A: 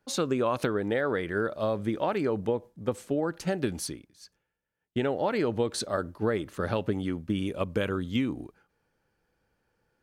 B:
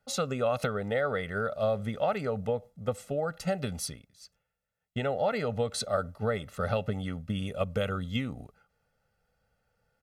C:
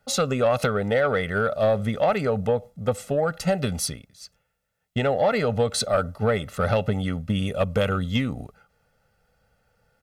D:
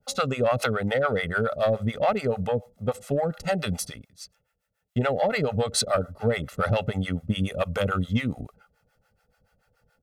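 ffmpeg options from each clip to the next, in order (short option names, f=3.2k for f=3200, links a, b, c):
-af "aecho=1:1:1.5:0.87,volume=-3dB"
-af "asoftclip=type=tanh:threshold=-20dB,volume=8.5dB"
-filter_complex "[0:a]acrossover=split=560[a][b];[a]aeval=exprs='val(0)*(1-1/2+1/2*cos(2*PI*7*n/s))':c=same[c];[b]aeval=exprs='val(0)*(1-1/2-1/2*cos(2*PI*7*n/s))':c=same[d];[c][d]amix=inputs=2:normalize=0,volume=3dB"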